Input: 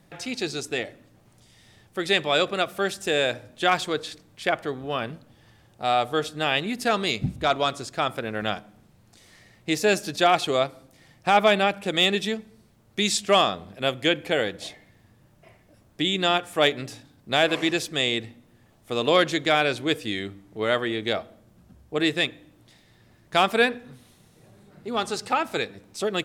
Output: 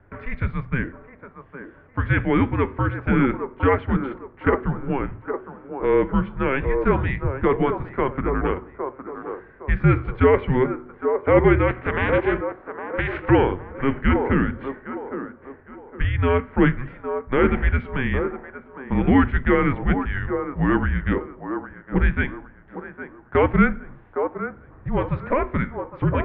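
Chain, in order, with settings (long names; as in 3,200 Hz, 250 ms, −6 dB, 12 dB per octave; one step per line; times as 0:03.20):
0:11.67–0:13.29: ceiling on every frequency bin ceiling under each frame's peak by 24 dB
dynamic equaliser 1,200 Hz, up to −6 dB, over −35 dBFS, Q 1.3
in parallel at −10 dB: wave folding −16.5 dBFS
on the sum: flanger 0.25 Hz, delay 4.4 ms, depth 8.3 ms, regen −80%
single-sideband voice off tune −270 Hz 150–2,200 Hz
hum removal 123.8 Hz, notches 3
on a send: delay with a band-pass on its return 811 ms, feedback 32%, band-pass 630 Hz, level −5 dB
on the sum: level +8.5 dB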